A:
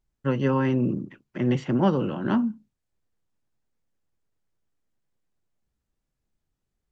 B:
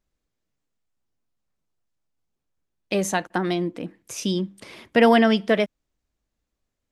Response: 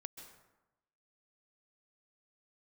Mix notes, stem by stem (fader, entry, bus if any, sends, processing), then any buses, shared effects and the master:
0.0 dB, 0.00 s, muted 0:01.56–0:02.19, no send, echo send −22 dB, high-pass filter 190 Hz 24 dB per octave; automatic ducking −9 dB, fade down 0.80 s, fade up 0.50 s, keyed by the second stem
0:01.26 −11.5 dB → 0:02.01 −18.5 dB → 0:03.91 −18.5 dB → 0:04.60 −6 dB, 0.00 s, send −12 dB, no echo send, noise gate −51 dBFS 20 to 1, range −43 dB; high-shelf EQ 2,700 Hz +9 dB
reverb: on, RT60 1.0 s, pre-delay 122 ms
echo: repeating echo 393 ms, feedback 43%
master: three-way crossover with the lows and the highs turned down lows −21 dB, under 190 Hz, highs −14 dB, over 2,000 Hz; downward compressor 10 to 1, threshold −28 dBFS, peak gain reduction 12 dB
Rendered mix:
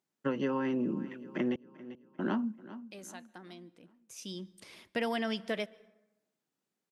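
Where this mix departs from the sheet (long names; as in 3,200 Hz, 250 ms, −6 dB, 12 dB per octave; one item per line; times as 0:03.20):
stem B −11.5 dB → −20.5 dB
master: missing three-way crossover with the lows and the highs turned down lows −21 dB, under 190 Hz, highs −14 dB, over 2,000 Hz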